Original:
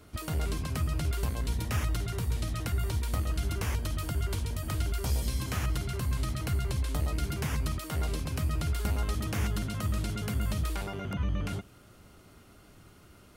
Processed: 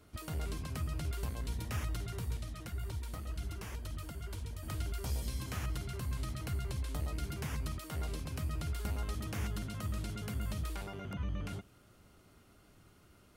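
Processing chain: 2.37–4.63 flange 1.9 Hz, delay 0 ms, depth 6.5 ms, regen -27%; gain -7 dB

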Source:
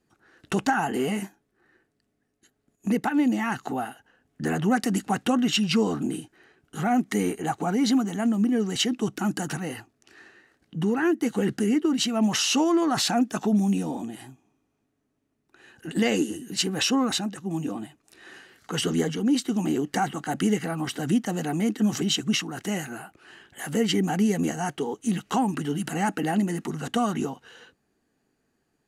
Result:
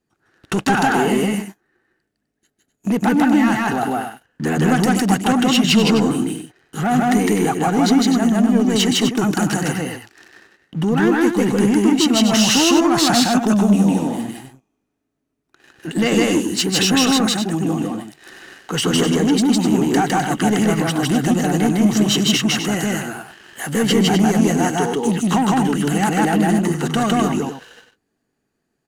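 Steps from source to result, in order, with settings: sample leveller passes 2; loudspeakers at several distances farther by 54 m 0 dB, 87 m -8 dB

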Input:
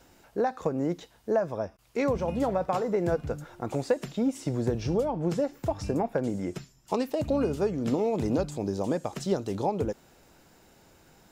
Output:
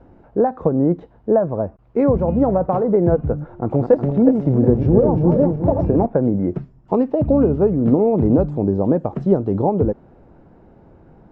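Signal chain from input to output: 3.56–6.06 regenerating reverse delay 0.182 s, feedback 60%, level -5 dB; LPF 1000 Hz 12 dB/oct; low shelf 490 Hz +7 dB; gain +7 dB

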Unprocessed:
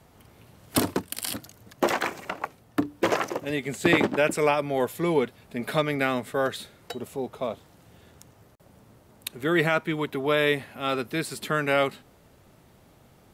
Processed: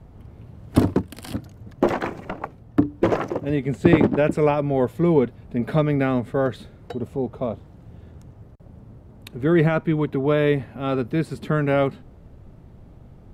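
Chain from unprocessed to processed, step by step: tilt -4 dB/oct

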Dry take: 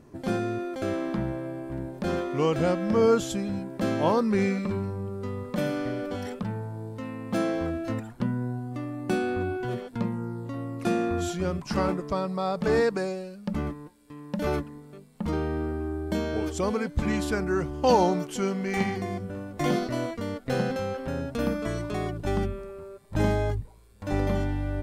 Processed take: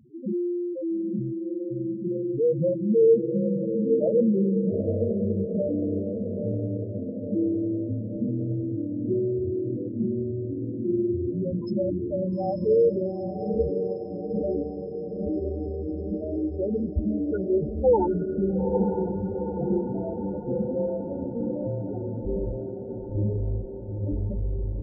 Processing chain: loudest bins only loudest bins 2; on a send: diffused feedback echo 0.881 s, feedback 63%, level -5.5 dB; on the sum: gain +5 dB

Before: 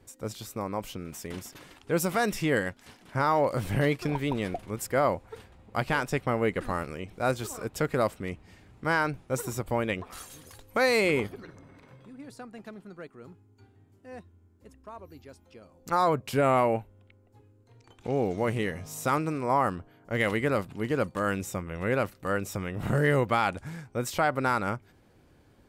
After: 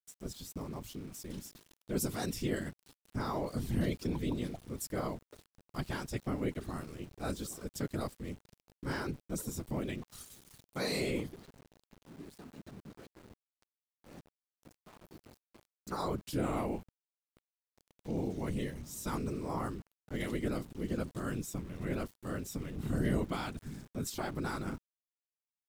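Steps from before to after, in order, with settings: band shelf 1100 Hz -10 dB 2.9 oct; whisperiser; sample gate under -48 dBFS; gain -4.5 dB

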